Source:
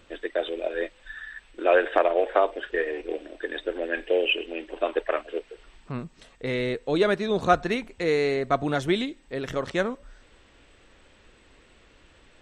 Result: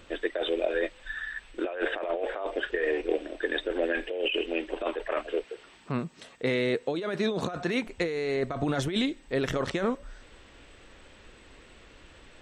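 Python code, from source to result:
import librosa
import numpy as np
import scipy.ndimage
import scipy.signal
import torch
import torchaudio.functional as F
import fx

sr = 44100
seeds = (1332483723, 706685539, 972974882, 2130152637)

y = fx.over_compress(x, sr, threshold_db=-28.0, ratio=-1.0)
y = fx.highpass(y, sr, hz=130.0, slope=12, at=(5.44, 7.87))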